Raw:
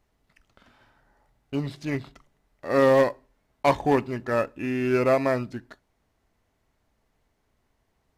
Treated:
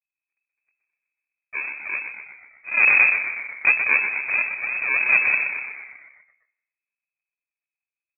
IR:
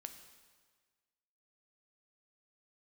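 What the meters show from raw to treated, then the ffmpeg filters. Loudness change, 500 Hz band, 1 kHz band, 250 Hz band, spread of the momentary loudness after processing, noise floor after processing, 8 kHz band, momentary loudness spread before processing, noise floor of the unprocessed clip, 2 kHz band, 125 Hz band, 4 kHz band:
+5.5 dB, −21.0 dB, −6.5 dB, below −20 dB, 17 LU, below −85 dBFS, can't be measured, 14 LU, −73 dBFS, +16.0 dB, below −20 dB, below −30 dB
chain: -filter_complex "[0:a]aeval=exprs='if(lt(val(0),0),0.251*val(0),val(0))':channel_layout=same,agate=range=-23dB:threshold=-56dB:ratio=16:detection=peak,adynamicequalizer=threshold=0.0316:dfrequency=640:dqfactor=0.99:tfrequency=640:tqfactor=0.99:attack=5:release=100:ratio=0.375:range=1.5:mode=boostabove:tftype=bell,aresample=16000,acrusher=samples=35:mix=1:aa=0.000001:lfo=1:lforange=21:lforate=3,aresample=44100,asplit=8[link_01][link_02][link_03][link_04][link_05][link_06][link_07][link_08];[link_02]adelay=123,afreqshift=67,volume=-8dB[link_09];[link_03]adelay=246,afreqshift=134,volume=-12.7dB[link_10];[link_04]adelay=369,afreqshift=201,volume=-17.5dB[link_11];[link_05]adelay=492,afreqshift=268,volume=-22.2dB[link_12];[link_06]adelay=615,afreqshift=335,volume=-26.9dB[link_13];[link_07]adelay=738,afreqshift=402,volume=-31.7dB[link_14];[link_08]adelay=861,afreqshift=469,volume=-36.4dB[link_15];[link_01][link_09][link_10][link_11][link_12][link_13][link_14][link_15]amix=inputs=8:normalize=0,asplit=2[link_16][link_17];[1:a]atrim=start_sample=2205,asetrate=61740,aresample=44100[link_18];[link_17][link_18]afir=irnorm=-1:irlink=0,volume=0dB[link_19];[link_16][link_19]amix=inputs=2:normalize=0,lowpass=frequency=2200:width_type=q:width=0.5098,lowpass=frequency=2200:width_type=q:width=0.6013,lowpass=frequency=2200:width_type=q:width=0.9,lowpass=frequency=2200:width_type=q:width=2.563,afreqshift=-2600"

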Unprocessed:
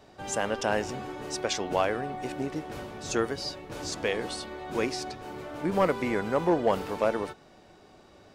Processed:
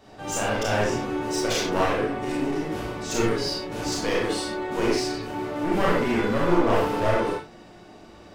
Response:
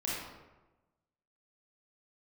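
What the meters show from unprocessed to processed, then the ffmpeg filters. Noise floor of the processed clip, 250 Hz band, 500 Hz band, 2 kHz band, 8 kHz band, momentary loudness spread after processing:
−48 dBFS, +6.5 dB, +4.0 dB, +5.5 dB, +5.0 dB, 7 LU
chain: -filter_complex "[0:a]aeval=exprs='clip(val(0),-1,0.0299)':channel_layout=same[link_01];[1:a]atrim=start_sample=2205,atrim=end_sample=6615[link_02];[link_01][link_02]afir=irnorm=-1:irlink=0,volume=3.5dB"

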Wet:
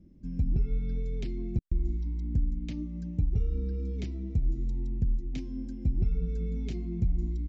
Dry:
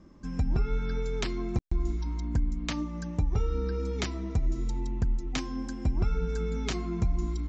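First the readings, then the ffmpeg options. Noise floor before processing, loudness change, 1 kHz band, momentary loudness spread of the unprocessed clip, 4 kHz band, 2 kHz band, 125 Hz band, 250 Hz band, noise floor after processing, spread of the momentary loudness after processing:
−38 dBFS, −1.0 dB, below −20 dB, 4 LU, −14.5 dB, −15.5 dB, 0.0 dB, −2.5 dB, −39 dBFS, 6 LU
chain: -af "firequalizer=gain_entry='entry(170,0);entry(1100,-30);entry(2200,-13);entry(7000,-18)':delay=0.05:min_phase=1"

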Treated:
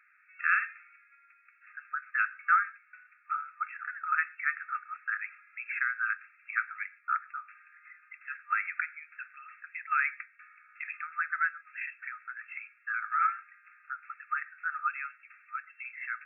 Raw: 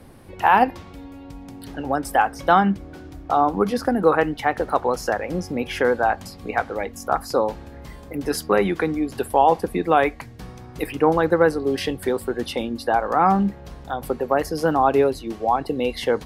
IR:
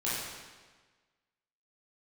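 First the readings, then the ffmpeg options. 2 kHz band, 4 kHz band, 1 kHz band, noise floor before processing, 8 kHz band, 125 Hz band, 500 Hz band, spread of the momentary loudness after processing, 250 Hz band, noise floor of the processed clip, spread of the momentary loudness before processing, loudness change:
−2.0 dB, below −40 dB, −13.5 dB, −41 dBFS, below −40 dB, below −40 dB, below −40 dB, 15 LU, below −40 dB, −64 dBFS, 20 LU, −11.5 dB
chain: -filter_complex "[0:a]asplit=2[link_01][link_02];[1:a]atrim=start_sample=2205,afade=type=out:start_time=0.19:duration=0.01,atrim=end_sample=8820[link_03];[link_02][link_03]afir=irnorm=-1:irlink=0,volume=-23dB[link_04];[link_01][link_04]amix=inputs=2:normalize=0,afftfilt=real='re*between(b*sr/4096,1200,2700)':imag='im*between(b*sr/4096,1200,2700)':win_size=4096:overlap=0.75,volume=-2.5dB"

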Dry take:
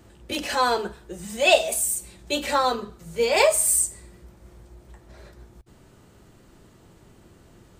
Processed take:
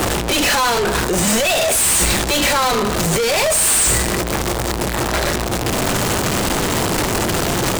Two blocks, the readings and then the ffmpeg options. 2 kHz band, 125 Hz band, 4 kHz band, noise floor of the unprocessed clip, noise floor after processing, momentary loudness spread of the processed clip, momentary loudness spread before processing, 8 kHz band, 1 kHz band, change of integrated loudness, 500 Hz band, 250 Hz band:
+9.5 dB, +23.5 dB, +10.5 dB, −54 dBFS, −21 dBFS, 7 LU, 15 LU, +9.5 dB, +7.5 dB, +6.0 dB, +6.0 dB, +16.0 dB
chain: -filter_complex "[0:a]aeval=exprs='val(0)+0.5*0.0668*sgn(val(0))':channel_layout=same,asplit=2[link_01][link_02];[link_02]highpass=frequency=720:poles=1,volume=37dB,asoftclip=type=tanh:threshold=-4dB[link_03];[link_01][link_03]amix=inputs=2:normalize=0,lowpass=frequency=4600:poles=1,volume=-6dB,acrossover=split=180|5900[link_04][link_05][link_06];[link_05]alimiter=limit=-11dB:level=0:latency=1:release=184[link_07];[link_04][link_07][link_06]amix=inputs=3:normalize=0"

